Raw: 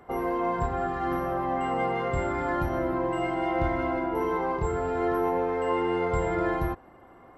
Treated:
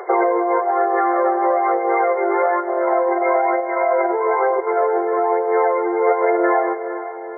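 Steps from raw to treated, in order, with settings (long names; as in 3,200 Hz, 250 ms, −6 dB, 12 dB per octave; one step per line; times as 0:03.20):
fade-out on the ending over 1.89 s
phase shifter 1.1 Hz, delay 2.8 ms, feedback 50%
compressor whose output falls as the input rises −32 dBFS, ratio −1
dynamic equaliser 620 Hz, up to +7 dB, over −46 dBFS, Q 1.5
feedback delay with all-pass diffusion 460 ms, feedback 50%, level −14.5 dB
brick-wall band-pass 340–2,300 Hz
in parallel at −1.5 dB: brickwall limiter −27.5 dBFS, peak gain reduction 12 dB
on the sum: level +8 dB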